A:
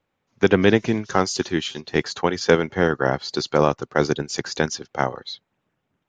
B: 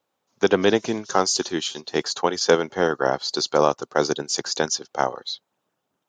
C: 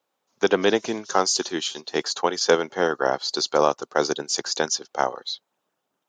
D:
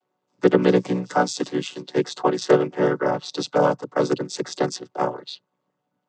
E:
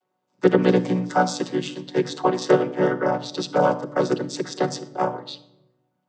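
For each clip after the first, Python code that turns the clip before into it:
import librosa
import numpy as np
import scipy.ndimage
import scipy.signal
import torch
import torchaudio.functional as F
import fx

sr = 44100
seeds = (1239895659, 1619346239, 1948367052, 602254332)

y1 = fx.highpass(x, sr, hz=960.0, slope=6)
y1 = fx.peak_eq(y1, sr, hz=2100.0, db=-12.5, octaves=1.3)
y1 = F.gain(torch.from_numpy(y1), 7.5).numpy()
y2 = fx.highpass(y1, sr, hz=260.0, slope=6)
y3 = fx.chord_vocoder(y2, sr, chord='minor triad', root=47)
y3 = F.gain(torch.from_numpy(y3), 2.5).numpy()
y4 = fx.room_shoebox(y3, sr, seeds[0], volume_m3=2900.0, walls='furnished', distance_m=0.98)
y4 = F.gain(torch.from_numpy(y4), -1.0).numpy()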